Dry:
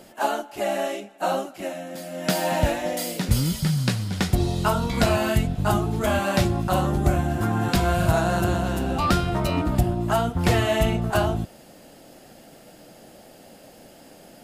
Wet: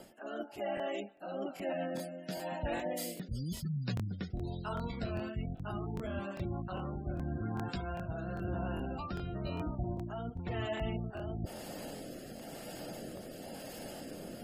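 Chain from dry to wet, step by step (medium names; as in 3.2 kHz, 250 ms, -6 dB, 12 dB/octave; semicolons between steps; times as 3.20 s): spectral gate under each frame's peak -25 dB strong; treble shelf 11 kHz +5.5 dB; reverse; compression 10:1, threshold -38 dBFS, peak gain reduction 23.5 dB; reverse; rotary cabinet horn 1 Hz; crackling interface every 0.40 s, samples 1024, repeat, from 0.75 s; trim +5 dB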